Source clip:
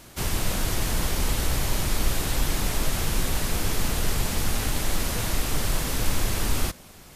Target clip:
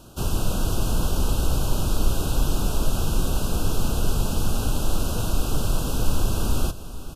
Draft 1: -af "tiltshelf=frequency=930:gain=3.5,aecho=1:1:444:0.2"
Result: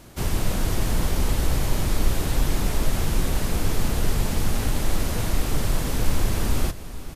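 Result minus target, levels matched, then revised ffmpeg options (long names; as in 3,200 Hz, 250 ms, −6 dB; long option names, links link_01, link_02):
2,000 Hz band +5.0 dB
-af "asuperstop=centerf=2000:order=12:qfactor=2.1,tiltshelf=frequency=930:gain=3.5,aecho=1:1:444:0.2"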